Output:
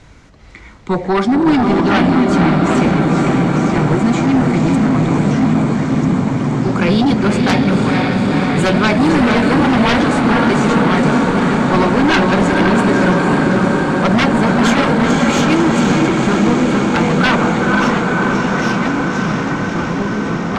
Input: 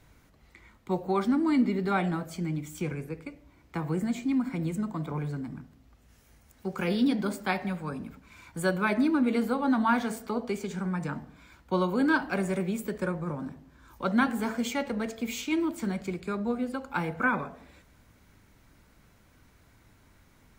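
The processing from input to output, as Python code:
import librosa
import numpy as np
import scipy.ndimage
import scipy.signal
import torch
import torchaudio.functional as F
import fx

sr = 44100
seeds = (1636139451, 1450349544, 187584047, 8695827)

y = scipy.signal.sosfilt(scipy.signal.butter(4, 7600.0, 'lowpass', fs=sr, output='sos'), x)
y = fx.echo_diffused(y, sr, ms=498, feedback_pct=77, wet_db=-3.5)
y = fx.fold_sine(y, sr, drive_db=12, ceiling_db=-9.5)
y = fx.echo_pitch(y, sr, ms=392, semitones=-3, count=3, db_per_echo=-6.0)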